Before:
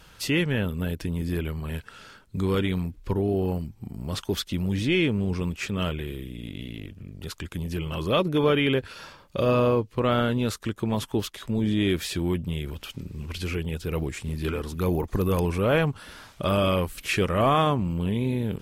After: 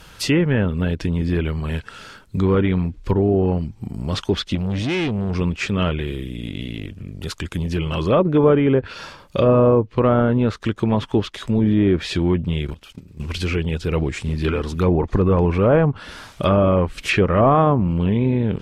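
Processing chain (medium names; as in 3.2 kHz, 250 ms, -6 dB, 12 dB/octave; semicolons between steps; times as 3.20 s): 4.55–5.35 s: valve stage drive 26 dB, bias 0.35; 12.67–13.20 s: level held to a coarse grid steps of 17 dB; low-pass that closes with the level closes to 1.1 kHz, closed at -18.5 dBFS; trim +7.5 dB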